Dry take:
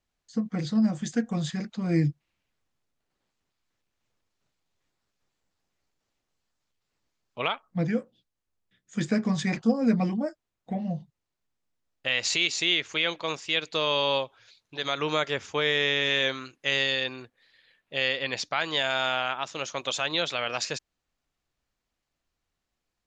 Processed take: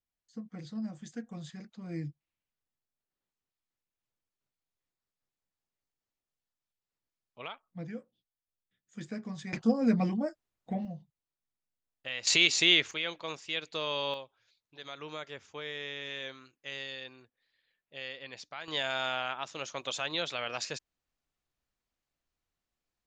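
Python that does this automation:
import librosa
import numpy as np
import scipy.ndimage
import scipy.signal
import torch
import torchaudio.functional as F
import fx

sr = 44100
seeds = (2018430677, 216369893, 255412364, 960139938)

y = fx.gain(x, sr, db=fx.steps((0.0, -14.0), (9.53, -3.0), (10.85, -11.0), (12.27, 1.5), (12.91, -8.0), (14.14, -15.0), (18.68, -6.0)))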